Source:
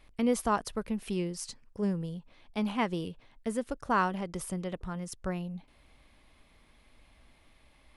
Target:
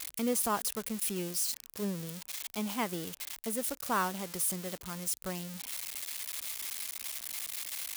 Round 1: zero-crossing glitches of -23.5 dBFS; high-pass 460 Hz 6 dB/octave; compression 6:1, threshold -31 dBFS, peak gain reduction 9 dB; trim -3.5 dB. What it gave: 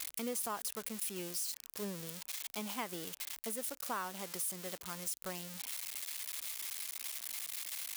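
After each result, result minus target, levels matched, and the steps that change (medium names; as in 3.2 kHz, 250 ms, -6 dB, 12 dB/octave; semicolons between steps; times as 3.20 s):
compression: peak gain reduction +9 dB; 125 Hz band -4.0 dB
remove: compression 6:1, threshold -31 dBFS, peak gain reduction 9 dB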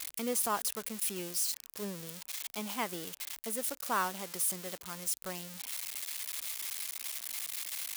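125 Hz band -6.0 dB
change: high-pass 130 Hz 6 dB/octave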